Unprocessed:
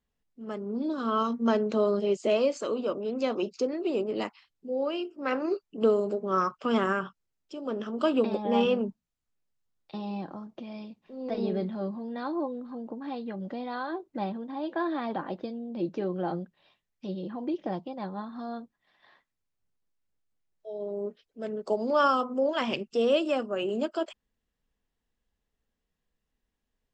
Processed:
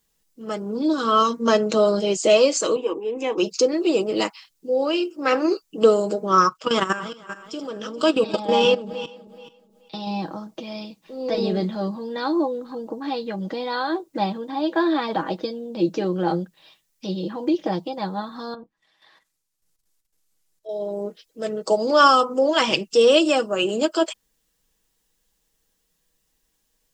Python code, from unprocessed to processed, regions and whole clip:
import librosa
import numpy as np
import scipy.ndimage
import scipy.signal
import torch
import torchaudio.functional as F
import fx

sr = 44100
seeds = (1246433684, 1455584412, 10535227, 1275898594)

y = fx.chain(x, sr, fx.high_shelf(hz=4300.0, db=-9.0),
    fx.fixed_phaser(hz=910.0, stages=8), at=(2.76, 3.38))
y = fx.chain(y, sr, fx.reverse_delay_fb(ms=214, feedback_pct=48, wet_db=-12),
    fx.peak_eq(hz=4100.0, db=3.0, octaves=1.8),
    fx.level_steps(step_db=13), at=(6.49, 10.07))
y = fx.chain(y, sr, fx.env_lowpass_down(base_hz=1200.0, full_db=-38.0),
    fx.level_steps(step_db=11), at=(18.54, 20.69))
y = fx.bass_treble(y, sr, bass_db=-4, treble_db=13)
y = fx.notch(y, sr, hz=690.0, q=12.0)
y = y + 0.47 * np.pad(y, (int(6.2 * sr / 1000.0), 0))[:len(y)]
y = y * 10.0 ** (8.5 / 20.0)